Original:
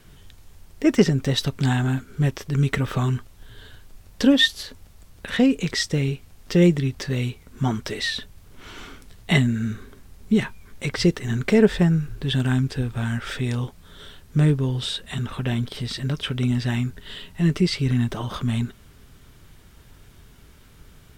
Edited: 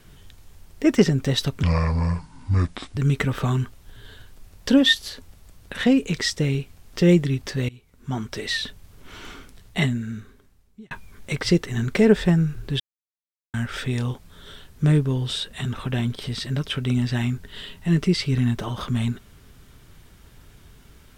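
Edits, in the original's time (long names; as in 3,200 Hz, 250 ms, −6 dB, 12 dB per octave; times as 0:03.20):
0:01.63–0:02.50: play speed 65%
0:07.22–0:08.06: fade in, from −24 dB
0:08.83–0:10.44: fade out linear
0:12.33–0:13.07: silence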